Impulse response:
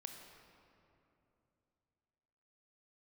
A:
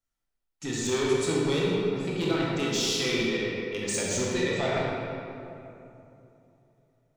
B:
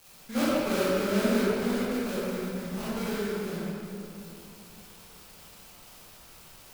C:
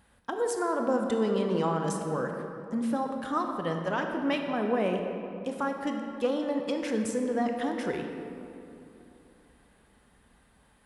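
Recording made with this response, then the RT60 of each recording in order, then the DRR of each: C; 2.9, 2.9, 2.9 seconds; −5.0, −11.0, 3.5 decibels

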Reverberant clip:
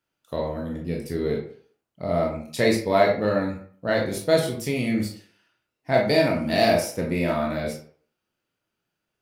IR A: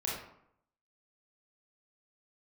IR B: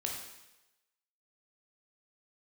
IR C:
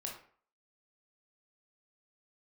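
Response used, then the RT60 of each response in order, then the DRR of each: C; 0.70, 1.0, 0.50 seconds; −5.0, −0.5, −1.0 decibels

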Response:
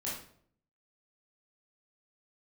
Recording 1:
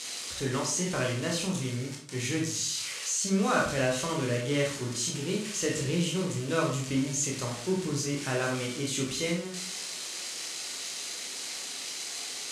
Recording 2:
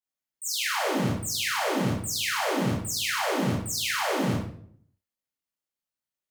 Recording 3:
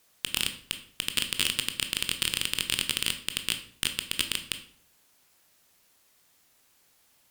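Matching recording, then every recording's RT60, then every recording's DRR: 2; 0.60, 0.60, 0.60 seconds; −2.0, −7.0, 7.0 decibels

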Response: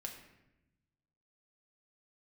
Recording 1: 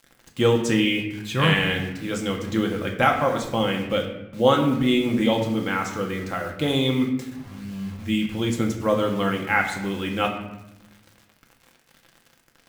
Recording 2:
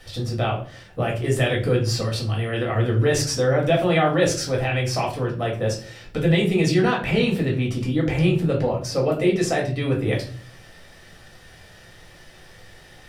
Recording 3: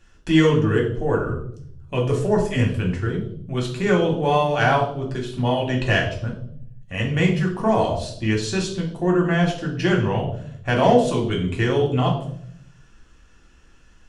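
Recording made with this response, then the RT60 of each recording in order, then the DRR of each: 1; 0.90, 0.45, 0.65 seconds; 1.0, −2.5, −1.5 decibels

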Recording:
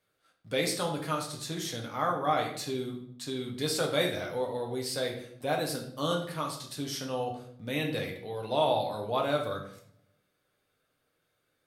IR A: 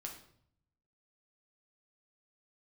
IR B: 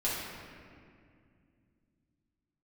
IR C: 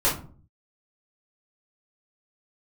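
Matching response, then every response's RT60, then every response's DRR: A; 0.65, 2.2, 0.45 seconds; 0.0, −8.5, −8.0 decibels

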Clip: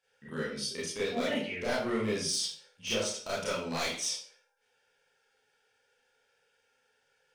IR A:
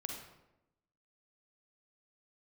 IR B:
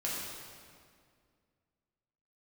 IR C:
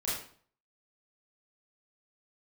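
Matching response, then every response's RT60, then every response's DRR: C; 0.90, 2.1, 0.50 seconds; 1.5, −6.5, −9.0 decibels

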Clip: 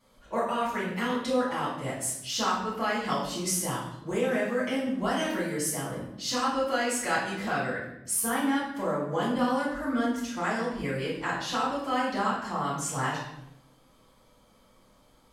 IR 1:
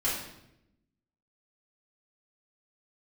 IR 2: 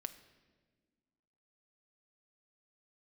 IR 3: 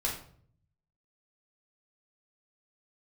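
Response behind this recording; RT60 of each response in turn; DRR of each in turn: 1; 0.85, 1.5, 0.55 seconds; −9.5, 9.5, −3.0 decibels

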